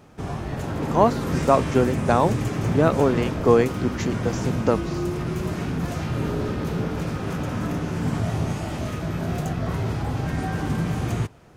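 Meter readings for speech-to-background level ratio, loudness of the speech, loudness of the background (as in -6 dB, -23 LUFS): 4.5 dB, -22.5 LUFS, -27.0 LUFS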